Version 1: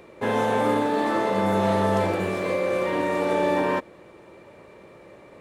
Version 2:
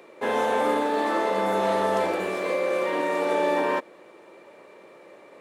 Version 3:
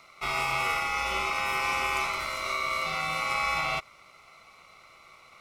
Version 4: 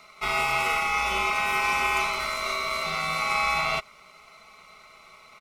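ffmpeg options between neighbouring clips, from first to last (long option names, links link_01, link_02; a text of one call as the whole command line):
ffmpeg -i in.wav -af "highpass=310" out.wav
ffmpeg -i in.wav -af "aeval=exprs='val(0)*sin(2*PI*1700*n/s)':channel_layout=same,highshelf=frequency=4400:width_type=q:width=1.5:gain=6.5,volume=-1.5dB" out.wav
ffmpeg -i in.wav -af "aecho=1:1:4.7:0.53,volume=2dB" out.wav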